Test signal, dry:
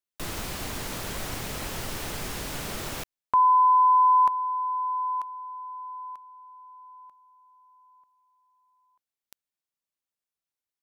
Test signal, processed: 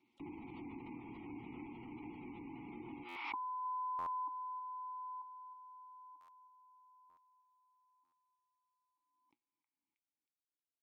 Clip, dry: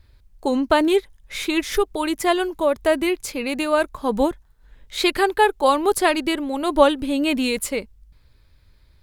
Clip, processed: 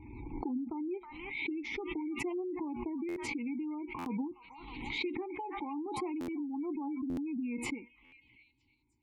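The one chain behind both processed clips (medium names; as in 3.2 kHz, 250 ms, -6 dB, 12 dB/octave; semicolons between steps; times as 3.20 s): short-mantissa float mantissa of 2-bit; vowel filter u; peak limiter -24 dBFS; compression 20:1, threshold -33 dBFS; bass shelf 360 Hz +11 dB; feedback comb 120 Hz, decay 0.2 s, harmonics all, mix 60%; repeats whose band climbs or falls 317 ms, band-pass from 1.5 kHz, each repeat 0.7 oct, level -6.5 dB; spectral gate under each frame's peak -30 dB strong; buffer glitch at 3.08/3.98/6.20/7.09/8.04 s, samples 512, times 6; swell ahead of each attack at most 37 dB/s; trim -1.5 dB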